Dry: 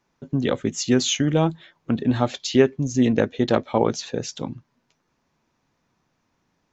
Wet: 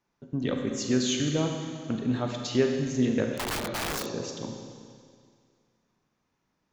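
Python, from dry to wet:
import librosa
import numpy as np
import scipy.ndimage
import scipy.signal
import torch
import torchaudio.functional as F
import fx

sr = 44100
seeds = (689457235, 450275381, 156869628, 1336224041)

y = fx.dynamic_eq(x, sr, hz=820.0, q=3.8, threshold_db=-40.0, ratio=4.0, max_db=-6)
y = fx.rev_schroeder(y, sr, rt60_s=2.1, comb_ms=32, drr_db=2.5)
y = fx.overflow_wrap(y, sr, gain_db=18.0, at=(3.37, 4.06))
y = y * librosa.db_to_amplitude(-8.0)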